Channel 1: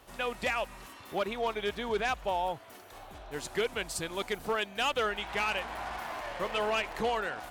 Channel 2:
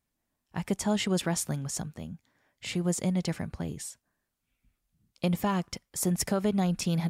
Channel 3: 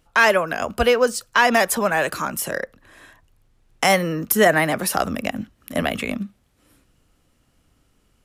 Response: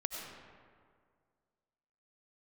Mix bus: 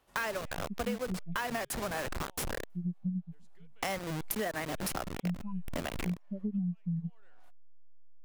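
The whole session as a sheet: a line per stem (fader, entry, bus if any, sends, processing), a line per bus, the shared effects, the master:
-13.5 dB, 0.00 s, no send, compressor 4:1, threshold -41 dBFS, peak gain reduction 12.5 dB; auto duck -14 dB, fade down 1.00 s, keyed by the second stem
+1.0 dB, 0.00 s, no send, spectral expander 4:1
-9.0 dB, 0.00 s, no send, level-crossing sampler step -17.5 dBFS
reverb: off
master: compressor 5:1, threshold -32 dBFS, peak gain reduction 13.5 dB

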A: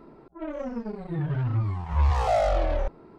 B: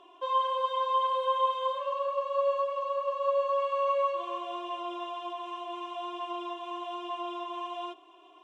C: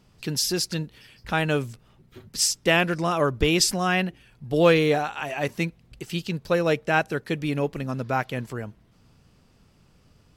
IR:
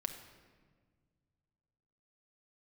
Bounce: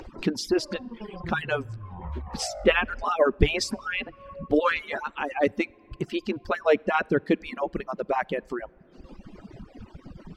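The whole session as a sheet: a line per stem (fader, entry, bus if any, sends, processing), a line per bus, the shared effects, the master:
-4.0 dB, 0.15 s, bus A, send -22 dB, inverse Chebyshev low-pass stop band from 5600 Hz, stop band 40 dB
-20.0 dB, 0.40 s, bus A, no send, dry
+2.0 dB, 0.00 s, no bus, send -6.5 dB, median-filter separation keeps percussive; LPF 1500 Hz 6 dB/oct; bell 190 Hz +4 dB 1.8 oct
bus A: 0.0 dB, high shelf 2000 Hz -11.5 dB; compressor 4:1, threshold -37 dBFS, peak gain reduction 12.5 dB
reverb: on, RT60 1.6 s, pre-delay 5 ms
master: reverb removal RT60 0.88 s; high shelf 9100 Hz -8 dB; upward compressor, threshold -29 dBFS

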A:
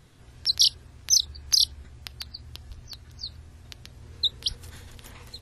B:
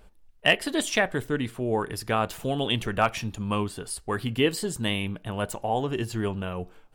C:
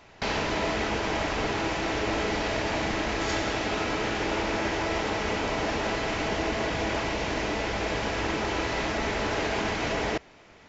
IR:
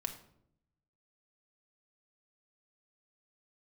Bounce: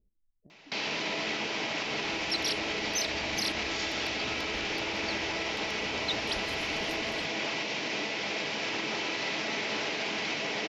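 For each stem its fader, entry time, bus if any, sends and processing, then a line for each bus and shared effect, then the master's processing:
-5.5 dB, 1.85 s, no send, limiter -19.5 dBFS, peak gain reduction 11 dB
-13.0 dB, 0.00 s, no send, compressor, threshold -30 dBFS, peak gain reduction 14.5 dB; ladder low-pass 410 Hz, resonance 25%
-6.0 dB, 0.50 s, no send, HPF 140 Hz 24 dB/oct; band shelf 3500 Hz +9 dB; limiter -17 dBFS, peak gain reduction 5 dB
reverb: off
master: dry

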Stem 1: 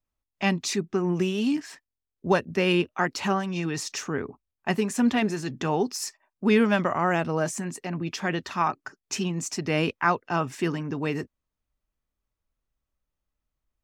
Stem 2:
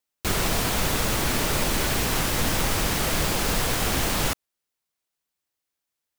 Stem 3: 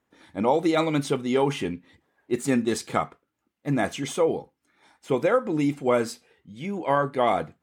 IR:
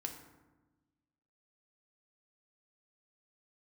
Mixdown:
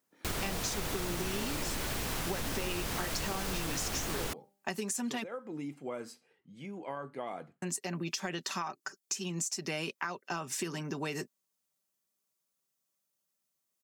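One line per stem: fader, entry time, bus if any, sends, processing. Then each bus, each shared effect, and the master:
-2.5 dB, 0.00 s, muted 5.24–7.62, bus A, no send, tone controls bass -5 dB, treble +14 dB; comb 5.2 ms, depth 39%
-6.5 dB, 0.00 s, no bus, no send, de-hum 198.8 Hz, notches 4
-9.5 dB, 0.00 s, bus A, no send, notch 3600 Hz; compressor 2:1, threshold -32 dBFS, peak gain reduction 9 dB
bus A: 0.0 dB, HPF 120 Hz 24 dB/oct; compressor 4:1, threshold -29 dBFS, peak gain reduction 10.5 dB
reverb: off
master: compressor 4:1, threshold -32 dBFS, peak gain reduction 8 dB

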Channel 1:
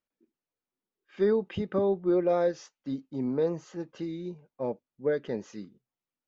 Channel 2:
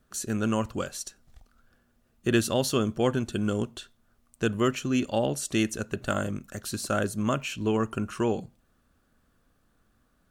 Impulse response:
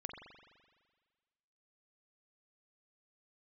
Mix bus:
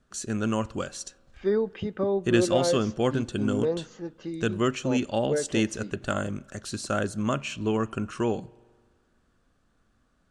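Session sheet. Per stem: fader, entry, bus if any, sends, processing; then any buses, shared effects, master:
-0.5 dB, 0.25 s, send -18 dB, dry
-1.0 dB, 0.00 s, send -16.5 dB, LPF 8700 Hz 24 dB/oct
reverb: on, RT60 1.6 s, pre-delay 42 ms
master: dry

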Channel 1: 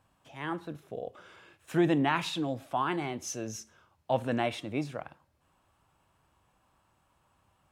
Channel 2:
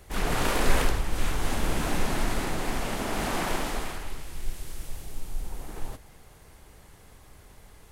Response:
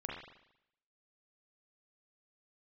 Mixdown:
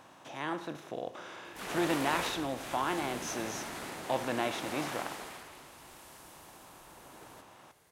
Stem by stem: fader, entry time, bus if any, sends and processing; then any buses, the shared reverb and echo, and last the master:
-4.5 dB, 0.00 s, no send, per-bin compression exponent 0.6
-8.5 dB, 1.45 s, no send, HPF 92 Hz 12 dB/oct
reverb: off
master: low shelf 230 Hz -9.5 dB

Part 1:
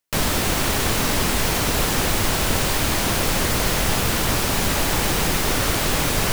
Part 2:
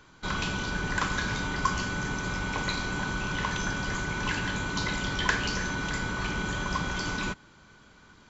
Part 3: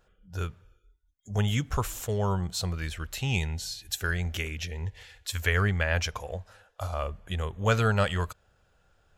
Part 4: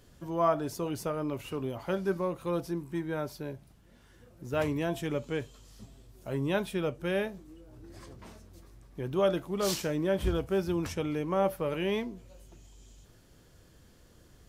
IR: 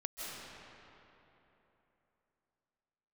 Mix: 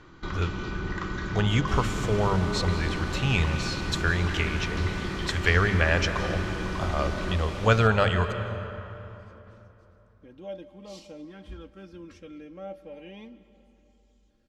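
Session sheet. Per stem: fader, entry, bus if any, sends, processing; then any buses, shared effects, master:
-18.0 dB, 1.55 s, no send, vibrato 6.4 Hz 32 cents
-3.5 dB, 0.00 s, send -3.5 dB, compressor 2:1, threshold -41 dBFS, peak gain reduction 12 dB; low shelf 170 Hz +9.5 dB; small resonant body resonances 340/1200/1900 Hz, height 11 dB
+1.5 dB, 0.00 s, send -6.5 dB, notches 50/100/150/200 Hz
-14.5 dB, 1.25 s, send -14 dB, comb 3.7 ms, depth 76%; LFO notch saw up 0.4 Hz 520–1800 Hz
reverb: on, RT60 3.3 s, pre-delay 0.12 s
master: LPF 5000 Hz 12 dB/oct

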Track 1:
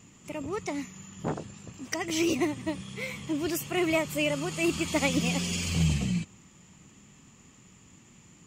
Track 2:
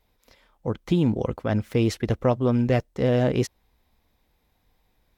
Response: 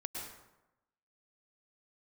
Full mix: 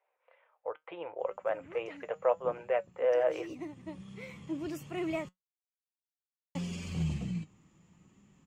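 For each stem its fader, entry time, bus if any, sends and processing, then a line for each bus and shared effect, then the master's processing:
-2.5 dB, 1.20 s, muted 5.29–6.55, no send, high shelf 11000 Hz -4.5 dB; auto duck -9 dB, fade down 1.75 s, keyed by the second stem
+2.5 dB, 0.00 s, no send, elliptic band-pass 520–2700 Hz, stop band 40 dB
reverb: off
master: high shelf 2100 Hz -10 dB; flange 0.73 Hz, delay 5.1 ms, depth 1.6 ms, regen +74%

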